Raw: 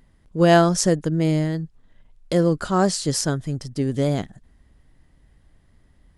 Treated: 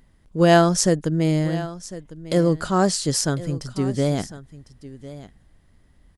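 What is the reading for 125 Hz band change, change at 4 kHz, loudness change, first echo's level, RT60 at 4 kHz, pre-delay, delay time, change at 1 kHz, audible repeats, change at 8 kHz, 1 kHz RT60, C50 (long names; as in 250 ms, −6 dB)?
0.0 dB, +1.0 dB, 0.0 dB, −16.5 dB, no reverb audible, no reverb audible, 1,052 ms, 0.0 dB, 1, +1.5 dB, no reverb audible, no reverb audible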